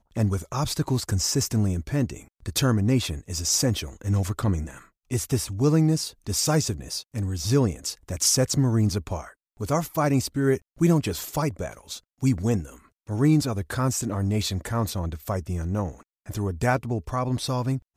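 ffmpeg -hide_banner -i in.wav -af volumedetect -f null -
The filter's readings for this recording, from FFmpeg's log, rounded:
mean_volume: -25.1 dB
max_volume: -8.3 dB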